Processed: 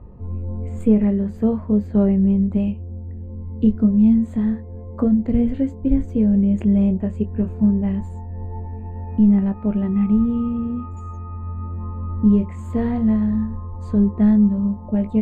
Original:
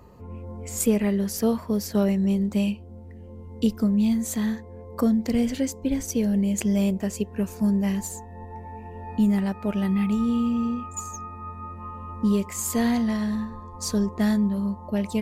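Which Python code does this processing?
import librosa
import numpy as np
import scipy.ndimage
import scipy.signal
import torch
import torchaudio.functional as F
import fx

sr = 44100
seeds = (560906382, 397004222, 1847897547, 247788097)

y = scipy.signal.lfilter(np.full(8, 1.0 / 8), 1.0, x)
y = fx.chorus_voices(y, sr, voices=2, hz=0.2, base_ms=21, depth_ms=2.7, mix_pct=25)
y = fx.tilt_eq(y, sr, slope=-3.5)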